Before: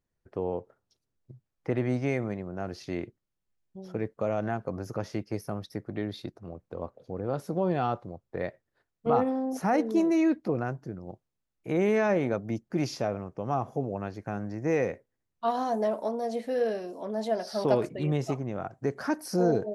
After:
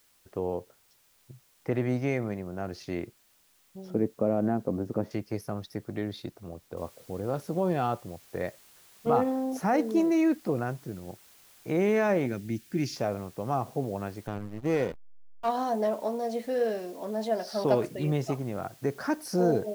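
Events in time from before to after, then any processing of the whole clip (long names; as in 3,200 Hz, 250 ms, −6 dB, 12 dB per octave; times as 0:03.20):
0:03.90–0:05.11: drawn EQ curve 130 Hz 0 dB, 240 Hz +9 dB, 5,700 Hz −17 dB
0:06.77: noise floor change −65 dB −57 dB
0:12.26–0:12.96: flat-topped bell 770 Hz −12 dB
0:14.27–0:15.49: slack as between gear wheels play −28.5 dBFS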